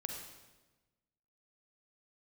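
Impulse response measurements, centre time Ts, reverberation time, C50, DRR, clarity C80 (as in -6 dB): 46 ms, 1.2 s, 3.0 dB, 2.0 dB, 5.0 dB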